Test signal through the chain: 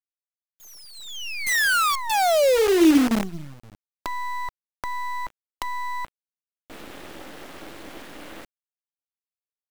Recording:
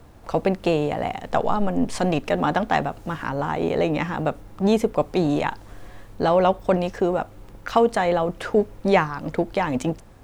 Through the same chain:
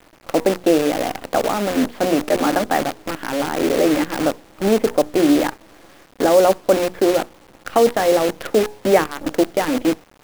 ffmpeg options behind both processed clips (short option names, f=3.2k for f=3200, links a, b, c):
-filter_complex "[0:a]highpass=f=210:w=0.5412,highpass=f=210:w=1.3066,equalizer=f=310:t=q:w=4:g=9,equalizer=f=540:t=q:w=4:g=4,equalizer=f=990:t=q:w=4:g=-6,equalizer=f=2.4k:t=q:w=4:g=-3,lowpass=f=3.3k:w=0.5412,lowpass=f=3.3k:w=1.3066,acrossover=split=2600[a][b];[b]acompressor=threshold=-45dB:ratio=4:attack=1:release=60[c];[a][c]amix=inputs=2:normalize=0,bandreject=f=60:t=h:w=6,bandreject=f=120:t=h:w=6,bandreject=f=180:t=h:w=6,bandreject=f=240:t=h:w=6,bandreject=f=300:t=h:w=6,bandreject=f=360:t=h:w=6,bandreject=f=420:t=h:w=6,bandreject=f=480:t=h:w=6,acrusher=bits=5:dc=4:mix=0:aa=0.000001,volume=2.5dB"